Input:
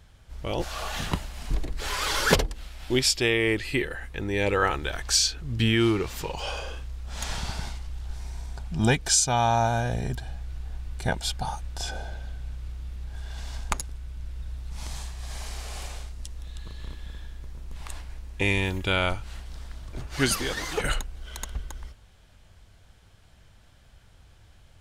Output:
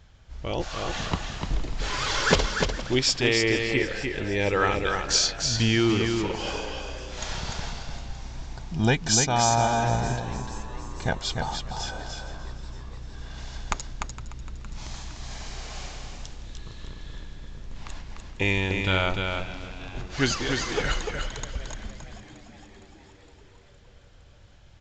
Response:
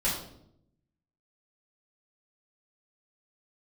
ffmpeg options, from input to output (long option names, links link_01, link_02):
-filter_complex "[0:a]asplit=2[link_01][link_02];[link_02]aecho=0:1:297|594|891:0.562|0.101|0.0182[link_03];[link_01][link_03]amix=inputs=2:normalize=0,aresample=16000,aresample=44100,asplit=2[link_04][link_05];[link_05]asplit=6[link_06][link_07][link_08][link_09][link_10][link_11];[link_06]adelay=462,afreqshift=89,volume=-17dB[link_12];[link_07]adelay=924,afreqshift=178,volume=-21.2dB[link_13];[link_08]adelay=1386,afreqshift=267,volume=-25.3dB[link_14];[link_09]adelay=1848,afreqshift=356,volume=-29.5dB[link_15];[link_10]adelay=2310,afreqshift=445,volume=-33.6dB[link_16];[link_11]adelay=2772,afreqshift=534,volume=-37.8dB[link_17];[link_12][link_13][link_14][link_15][link_16][link_17]amix=inputs=6:normalize=0[link_18];[link_04][link_18]amix=inputs=2:normalize=0"